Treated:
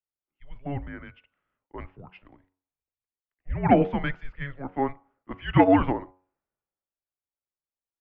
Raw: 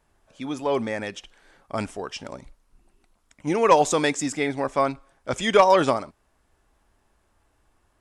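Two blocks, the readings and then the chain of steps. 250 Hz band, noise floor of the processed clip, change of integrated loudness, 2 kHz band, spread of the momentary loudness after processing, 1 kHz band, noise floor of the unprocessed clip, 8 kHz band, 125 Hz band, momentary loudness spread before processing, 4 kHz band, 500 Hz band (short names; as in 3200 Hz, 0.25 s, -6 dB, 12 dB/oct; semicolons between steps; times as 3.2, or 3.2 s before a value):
+2.0 dB, under -85 dBFS, -2.0 dB, -5.5 dB, 23 LU, -5.5 dB, -68 dBFS, under -40 dB, +5.5 dB, 18 LU, -13.0 dB, -6.0 dB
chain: mistuned SSB -280 Hz 190–2900 Hz; de-hum 92.56 Hz, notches 16; three-band expander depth 70%; gain -7 dB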